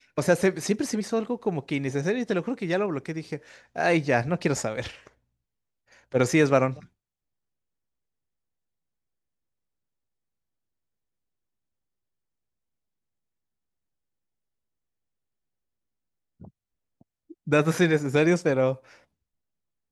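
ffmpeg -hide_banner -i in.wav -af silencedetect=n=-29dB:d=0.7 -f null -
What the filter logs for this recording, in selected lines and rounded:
silence_start: 4.87
silence_end: 6.15 | silence_duration: 1.27
silence_start: 6.73
silence_end: 17.47 | silence_duration: 10.75
silence_start: 18.74
silence_end: 19.92 | silence_duration: 1.18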